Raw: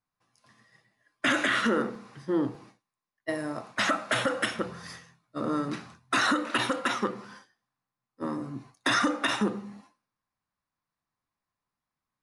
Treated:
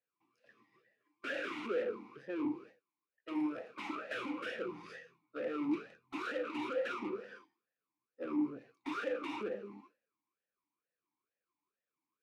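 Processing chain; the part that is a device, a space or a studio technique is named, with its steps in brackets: talk box (tube stage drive 37 dB, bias 0.65; vowel sweep e-u 2.2 Hz); gain +12 dB

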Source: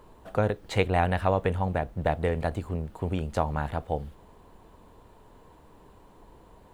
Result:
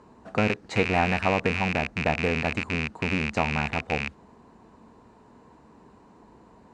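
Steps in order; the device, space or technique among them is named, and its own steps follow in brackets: car door speaker with a rattle (rattling part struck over -35 dBFS, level -15 dBFS; speaker cabinet 81–7500 Hz, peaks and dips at 94 Hz -5 dB, 230 Hz +8 dB, 550 Hz -4 dB, 3300 Hz -9 dB); gain +1.5 dB

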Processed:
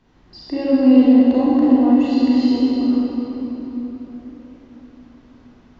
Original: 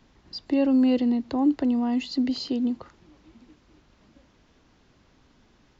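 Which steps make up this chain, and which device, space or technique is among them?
swimming-pool hall (reverb RT60 4.1 s, pre-delay 32 ms, DRR -9 dB; high shelf 3200 Hz -8 dB); gain -1 dB

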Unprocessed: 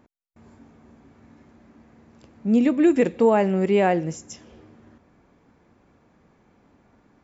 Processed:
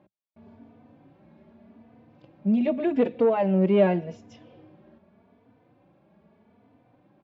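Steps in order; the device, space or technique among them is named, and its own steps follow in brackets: barber-pole flanger into a guitar amplifier (endless flanger 3.3 ms +0.84 Hz; soft clip -14.5 dBFS, distortion -17 dB; speaker cabinet 96–3800 Hz, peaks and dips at 110 Hz +4 dB, 190 Hz +5 dB, 620 Hz +7 dB, 1300 Hz -5 dB, 1900 Hz -5 dB)

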